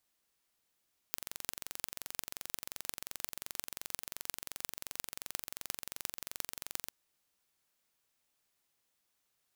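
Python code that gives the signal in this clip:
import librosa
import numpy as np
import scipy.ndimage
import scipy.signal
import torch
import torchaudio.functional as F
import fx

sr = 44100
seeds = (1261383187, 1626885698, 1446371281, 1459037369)

y = fx.impulse_train(sr, length_s=5.78, per_s=22.8, accent_every=8, level_db=-7.0)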